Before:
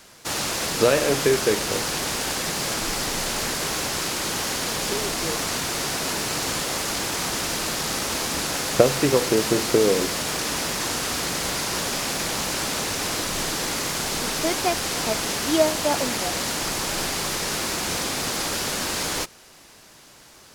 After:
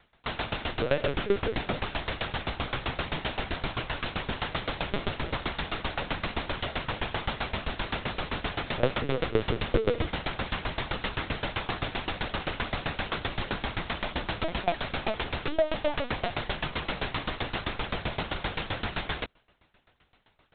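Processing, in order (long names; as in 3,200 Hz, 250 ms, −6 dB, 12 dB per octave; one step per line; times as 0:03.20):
in parallel at −3 dB: fuzz pedal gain 30 dB, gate −36 dBFS
on the sum: linear-prediction vocoder at 8 kHz pitch kept
tremolo with a ramp in dB decaying 7.7 Hz, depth 19 dB
level −7 dB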